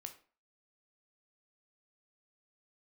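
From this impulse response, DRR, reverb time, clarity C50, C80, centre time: 5.5 dB, 0.40 s, 12.0 dB, 17.0 dB, 9 ms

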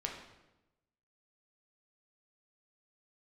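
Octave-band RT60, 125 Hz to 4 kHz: 1.2, 1.1, 1.0, 0.95, 0.85, 0.80 s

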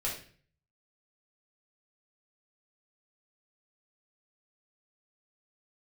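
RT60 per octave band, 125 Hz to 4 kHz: 0.75, 0.55, 0.50, 0.40, 0.50, 0.45 s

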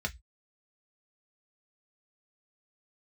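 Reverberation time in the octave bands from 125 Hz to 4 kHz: 0.30, 0.15, 0.10, 0.15, 0.15, 0.20 s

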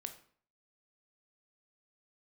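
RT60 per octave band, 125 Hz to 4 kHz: 0.55, 0.55, 0.50, 0.50, 0.45, 0.40 s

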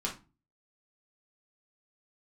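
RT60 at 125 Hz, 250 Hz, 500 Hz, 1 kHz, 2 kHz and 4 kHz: 0.50, 0.45, 0.30, 0.30, 0.25, 0.25 s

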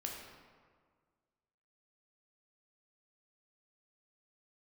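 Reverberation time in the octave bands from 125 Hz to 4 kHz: 1.9, 1.9, 1.7, 1.7, 1.4, 1.0 s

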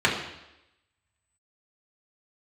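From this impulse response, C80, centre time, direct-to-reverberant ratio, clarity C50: 8.0 dB, 35 ms, -4.5 dB, 5.5 dB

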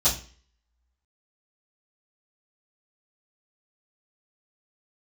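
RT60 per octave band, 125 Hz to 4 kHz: 0.45, 0.45, 0.40, 0.40, 0.45, 0.40 s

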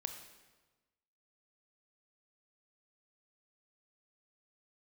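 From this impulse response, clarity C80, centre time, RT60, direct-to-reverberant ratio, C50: 9.0 dB, 22 ms, 1.3 s, 6.0 dB, 7.5 dB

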